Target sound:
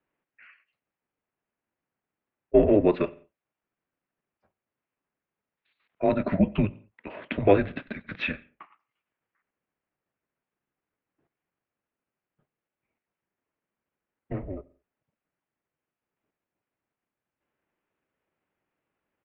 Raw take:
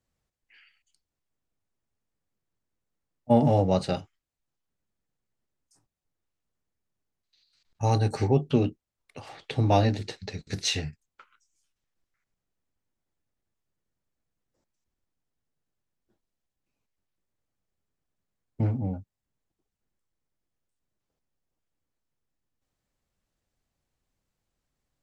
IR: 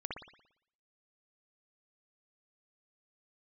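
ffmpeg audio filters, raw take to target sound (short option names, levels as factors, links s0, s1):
-filter_complex "[0:a]highpass=f=350:t=q:w=0.5412,highpass=f=350:t=q:w=1.307,lowpass=f=2900:t=q:w=0.5176,lowpass=f=2900:t=q:w=0.7071,lowpass=f=2900:t=q:w=1.932,afreqshift=-200,asplit=2[s0][s1];[1:a]atrim=start_sample=2205,afade=t=out:st=0.28:d=0.01,atrim=end_sample=12789,adelay=50[s2];[s1][s2]afir=irnorm=-1:irlink=0,volume=0.0891[s3];[s0][s3]amix=inputs=2:normalize=0,atempo=1.3,volume=2"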